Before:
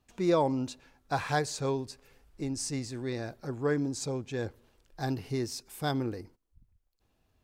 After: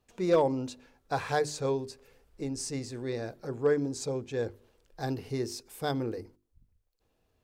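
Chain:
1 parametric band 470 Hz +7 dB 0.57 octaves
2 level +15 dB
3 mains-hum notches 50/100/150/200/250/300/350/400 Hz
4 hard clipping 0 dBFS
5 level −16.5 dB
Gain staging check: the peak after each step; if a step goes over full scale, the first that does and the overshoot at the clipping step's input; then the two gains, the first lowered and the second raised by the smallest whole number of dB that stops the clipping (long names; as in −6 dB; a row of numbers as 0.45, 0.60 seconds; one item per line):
−11.0, +4.0, +5.5, 0.0, −16.5 dBFS
step 2, 5.5 dB
step 2 +9 dB, step 5 −10.5 dB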